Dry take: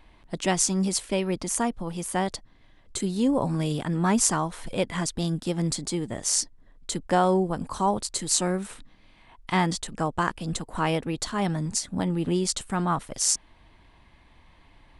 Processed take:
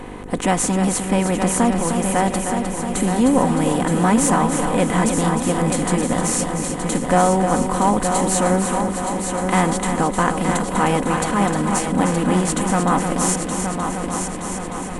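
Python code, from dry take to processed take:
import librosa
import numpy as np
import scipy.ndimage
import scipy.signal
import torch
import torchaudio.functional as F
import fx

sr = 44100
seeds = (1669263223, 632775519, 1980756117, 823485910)

p1 = fx.bin_compress(x, sr, power=0.6)
p2 = fx.peak_eq(p1, sr, hz=4900.0, db=-13.5, octaves=0.88)
p3 = p2 + 0.4 * np.pad(p2, (int(4.0 * sr / 1000.0), 0))[:len(p2)]
p4 = fx.echo_heads(p3, sr, ms=307, heads='first and third', feedback_pct=68, wet_db=-8.0)
p5 = 10.0 ** (-15.5 / 20.0) * np.tanh(p4 / 10.0 ** (-15.5 / 20.0))
p6 = p4 + (p5 * 10.0 ** (-9.0 / 20.0))
p7 = fx.dmg_buzz(p6, sr, base_hz=50.0, harmonics=10, level_db=-38.0, tilt_db=0, odd_only=False)
y = p7 * 10.0 ** (1.0 / 20.0)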